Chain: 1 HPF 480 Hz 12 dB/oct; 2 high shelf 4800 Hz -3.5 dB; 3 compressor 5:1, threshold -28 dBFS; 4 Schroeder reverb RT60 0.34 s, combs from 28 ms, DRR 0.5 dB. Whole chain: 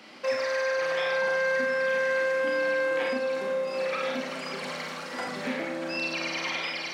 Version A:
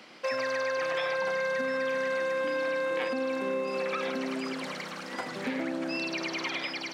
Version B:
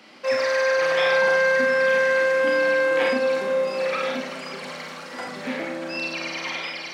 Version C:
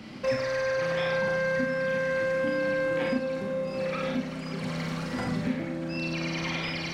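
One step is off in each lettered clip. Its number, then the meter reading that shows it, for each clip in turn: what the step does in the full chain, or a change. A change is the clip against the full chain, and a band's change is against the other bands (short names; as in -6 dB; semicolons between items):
4, momentary loudness spread change -3 LU; 3, mean gain reduction 4.0 dB; 1, 125 Hz band +18.0 dB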